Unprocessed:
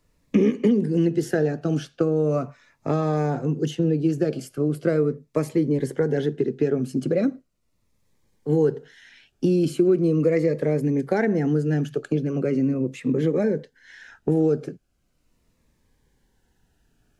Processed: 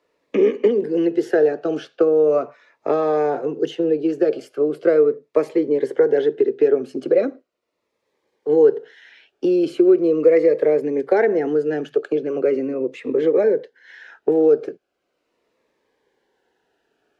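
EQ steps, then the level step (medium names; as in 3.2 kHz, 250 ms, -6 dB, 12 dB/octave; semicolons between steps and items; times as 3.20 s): high-pass 220 Hz 6 dB/octave; three-band isolator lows -16 dB, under 410 Hz, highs -15 dB, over 4.5 kHz; peaking EQ 400 Hz +10.5 dB 1.3 oct; +3.0 dB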